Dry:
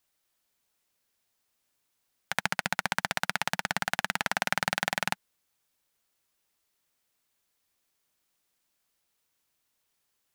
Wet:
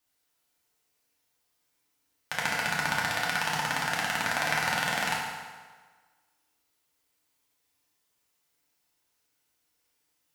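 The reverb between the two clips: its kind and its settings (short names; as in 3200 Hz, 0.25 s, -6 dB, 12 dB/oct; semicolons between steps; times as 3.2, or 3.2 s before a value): FDN reverb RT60 1.5 s, low-frequency decay 0.85×, high-frequency decay 0.8×, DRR -5 dB; gain -4 dB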